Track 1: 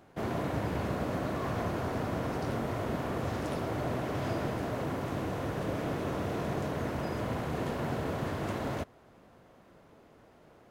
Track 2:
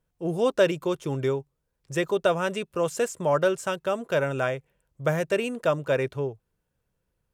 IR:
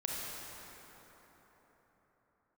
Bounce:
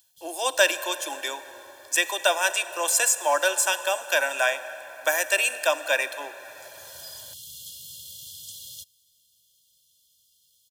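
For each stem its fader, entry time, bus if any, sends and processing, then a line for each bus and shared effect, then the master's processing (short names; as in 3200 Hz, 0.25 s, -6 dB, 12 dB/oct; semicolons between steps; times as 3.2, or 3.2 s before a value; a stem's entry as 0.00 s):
-0.5 dB, 0.00 s, no send, bell 490 Hz -5.5 dB 2.1 oct; FFT band-reject 560–2800 Hz; passive tone stack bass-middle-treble 10-0-10; auto duck -15 dB, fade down 0.30 s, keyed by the second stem
0.0 dB, 0.00 s, send -13 dB, steep high-pass 290 Hz 96 dB/oct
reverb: on, RT60 4.5 s, pre-delay 28 ms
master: tilt +4.5 dB/oct; comb 1.2 ms, depth 84%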